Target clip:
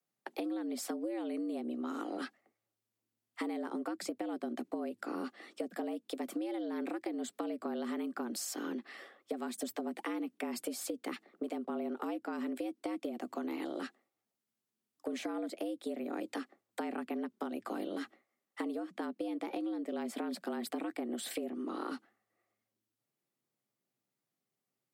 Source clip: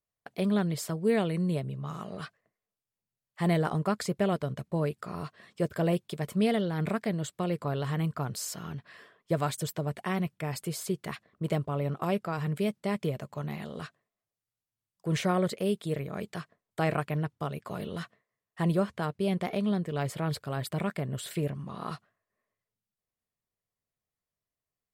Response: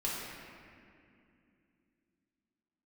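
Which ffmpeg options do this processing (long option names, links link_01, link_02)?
-filter_complex "[0:a]acrossover=split=86|180[link_01][link_02][link_03];[link_01]acompressor=threshold=-56dB:ratio=4[link_04];[link_02]acompressor=threshold=-39dB:ratio=4[link_05];[link_03]acompressor=threshold=-37dB:ratio=4[link_06];[link_04][link_05][link_06]amix=inputs=3:normalize=0,afreqshift=110,equalizer=frequency=390:width_type=o:width=0.4:gain=8,acompressor=threshold=-36dB:ratio=6,volume=1.5dB"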